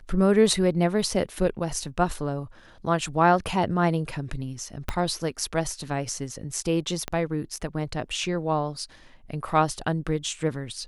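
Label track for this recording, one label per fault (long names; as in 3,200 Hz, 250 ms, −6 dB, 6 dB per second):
4.890000	4.890000	click −12 dBFS
7.080000	7.080000	click −14 dBFS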